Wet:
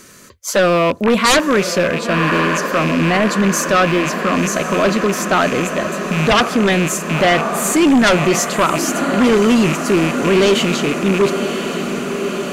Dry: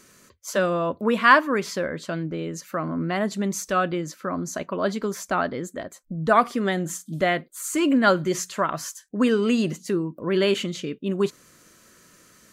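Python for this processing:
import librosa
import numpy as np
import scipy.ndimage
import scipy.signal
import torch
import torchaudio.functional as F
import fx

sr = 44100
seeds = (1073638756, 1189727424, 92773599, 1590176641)

y = fx.rattle_buzz(x, sr, strikes_db=-38.0, level_db=-23.0)
y = fx.echo_diffused(y, sr, ms=1076, feedback_pct=73, wet_db=-11.0)
y = fx.fold_sine(y, sr, drive_db=13, ceiling_db=-2.5)
y = F.gain(torch.from_numpy(y), -5.5).numpy()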